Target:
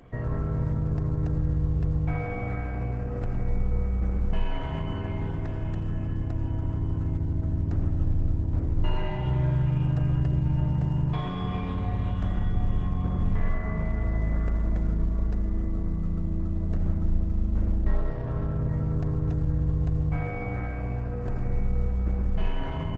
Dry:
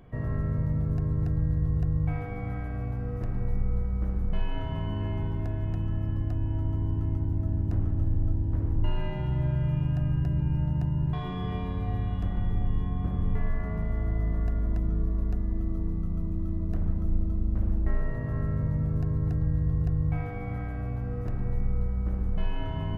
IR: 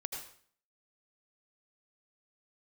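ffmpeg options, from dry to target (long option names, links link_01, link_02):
-filter_complex "[0:a]bandreject=frequency=50:width_type=h:width=6,bandreject=frequency=100:width_type=h:width=6,bandreject=frequency=150:width_type=h:width=6,bandreject=frequency=200:width_type=h:width=6,bandreject=frequency=250:width_type=h:width=6,asettb=1/sr,asplit=3[link_01][link_02][link_03];[link_01]atrim=end=17.724[link_04];[link_02]atrim=start=17.72:end=18.69,asetpts=PTS-STARTPTS,afade=type=in:duration=0.004:curve=qsin,afade=type=out:start_time=0.966:duration=0.004:curve=qsin,adynamicsmooth=sensitivity=5:basefreq=1600[link_05];[link_03]atrim=start=18.686[link_06];[link_04][link_05]acrossfade=duration=0.004:curve1=hsin:curve2=qsin[link_07];[link_07][link_06]acrossfade=duration=0.004:curve1=qsin:curve2=hsin,asplit=2[link_08][link_09];[1:a]atrim=start_sample=2205,lowshelf=frequency=360:gain=-7.5[link_10];[link_09][link_10]afir=irnorm=-1:irlink=0,volume=-1dB[link_11];[link_08][link_11]amix=inputs=2:normalize=0,aresample=22050,aresample=44100" -ar 48000 -c:a libopus -b:a 12k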